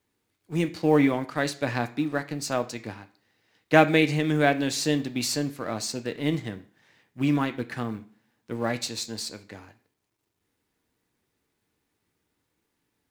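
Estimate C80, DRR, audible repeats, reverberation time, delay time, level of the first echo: 20.5 dB, 8.0 dB, none, 0.45 s, none, none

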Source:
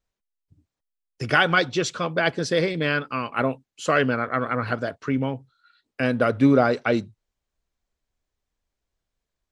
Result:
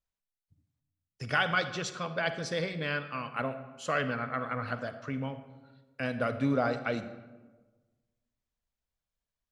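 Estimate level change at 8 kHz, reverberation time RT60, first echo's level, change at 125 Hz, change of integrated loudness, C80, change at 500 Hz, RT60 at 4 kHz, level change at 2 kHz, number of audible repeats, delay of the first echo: -8.5 dB, 1.3 s, none, -8.5 dB, -9.5 dB, 12.5 dB, -10.5 dB, 0.70 s, -8.5 dB, none, none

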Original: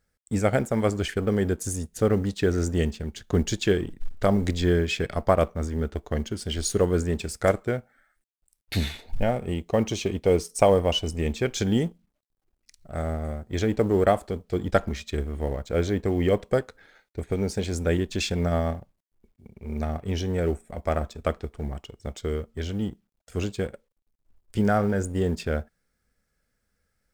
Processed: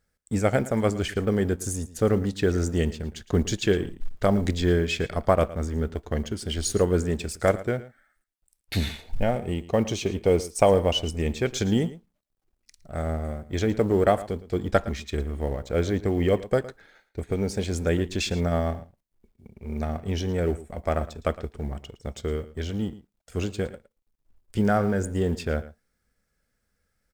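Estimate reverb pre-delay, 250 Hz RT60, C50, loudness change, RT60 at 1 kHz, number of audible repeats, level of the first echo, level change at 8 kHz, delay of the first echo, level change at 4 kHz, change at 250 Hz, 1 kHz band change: none, none, none, 0.0 dB, none, 1, -17.0 dB, 0.0 dB, 0.112 s, 0.0 dB, 0.0 dB, 0.0 dB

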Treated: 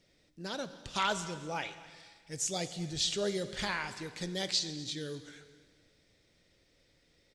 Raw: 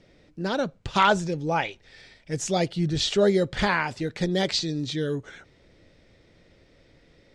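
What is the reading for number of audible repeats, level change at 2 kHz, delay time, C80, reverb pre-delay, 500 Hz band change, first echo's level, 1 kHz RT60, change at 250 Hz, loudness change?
1, -10.0 dB, 0.25 s, 13.0 dB, 7 ms, -13.0 dB, -20.5 dB, 1.7 s, -13.5 dB, -10.0 dB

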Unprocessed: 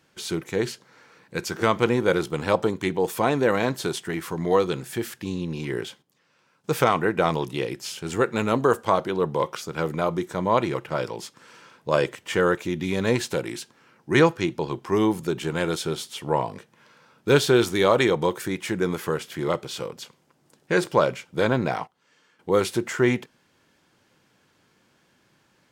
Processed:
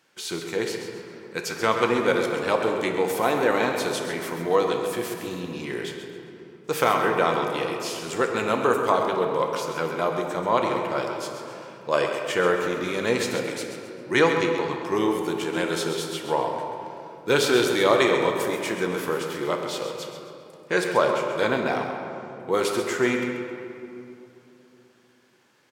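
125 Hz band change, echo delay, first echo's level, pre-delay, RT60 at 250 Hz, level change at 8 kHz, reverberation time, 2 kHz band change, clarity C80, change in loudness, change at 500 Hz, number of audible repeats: -7.0 dB, 0.133 s, -9.0 dB, 5 ms, 3.4 s, +1.0 dB, 2.9 s, +2.0 dB, 3.5 dB, 0.0 dB, 0.0 dB, 2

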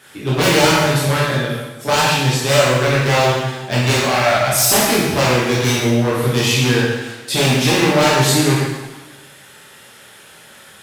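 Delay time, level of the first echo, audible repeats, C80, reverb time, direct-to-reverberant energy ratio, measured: none, none, none, 2.0 dB, 1.2 s, -7.0 dB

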